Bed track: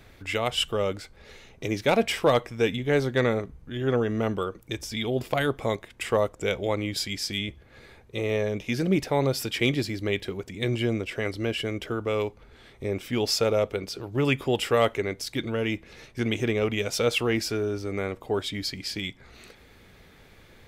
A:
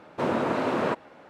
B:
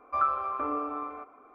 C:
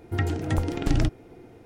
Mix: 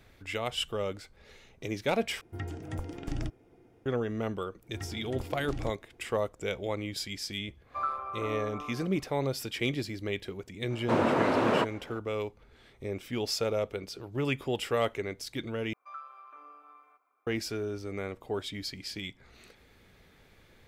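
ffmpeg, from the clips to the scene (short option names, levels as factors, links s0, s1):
-filter_complex "[3:a]asplit=2[s0][s1];[2:a]asplit=2[s2][s3];[0:a]volume=0.473[s4];[s0]bandreject=f=4100:w=10[s5];[s3]aderivative[s6];[s4]asplit=3[s7][s8][s9];[s7]atrim=end=2.214[s10];[s5]atrim=end=1.65,asetpts=PTS-STARTPTS,volume=0.251[s11];[s8]atrim=start=3.856:end=15.734[s12];[s6]atrim=end=1.54,asetpts=PTS-STARTPTS,volume=0.708[s13];[s9]atrim=start=17.266[s14];[s1]atrim=end=1.65,asetpts=PTS-STARTPTS,volume=0.178,afade=t=in:d=0.004:c=hsin,afade=t=out:st=1.646:d=0.004:c=hsin,adelay=4620[s15];[s2]atrim=end=1.54,asetpts=PTS-STARTPTS,volume=0.501,afade=t=in:d=0.1,afade=t=out:st=1.44:d=0.1,adelay=336042S[s16];[1:a]atrim=end=1.29,asetpts=PTS-STARTPTS,afade=t=in:d=0.004:c=hsin,afade=t=out:st=1.286:d=0.004:c=hsin,adelay=10700[s17];[s10][s11]acrossfade=d=0.004:c1=hsin:c2=hsin[s18];[s18][s12]acrossfade=d=0.004:c1=hsin:c2=hsin[s19];[s19][s13]acrossfade=d=0.004:c1=hsin:c2=hsin[s20];[s20][s14]acrossfade=d=0.004:c1=hsin:c2=hsin[s21];[s21][s15][s16][s17]amix=inputs=4:normalize=0"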